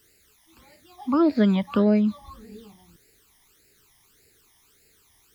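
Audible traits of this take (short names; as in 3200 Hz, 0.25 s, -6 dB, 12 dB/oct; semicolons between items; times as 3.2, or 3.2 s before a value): a quantiser's noise floor 10-bit, dither triangular; phasing stages 12, 1.7 Hz, lowest notch 440–1100 Hz; WMA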